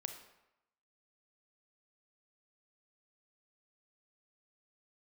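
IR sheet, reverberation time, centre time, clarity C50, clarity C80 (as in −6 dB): 0.90 s, 19 ms, 8.0 dB, 10.5 dB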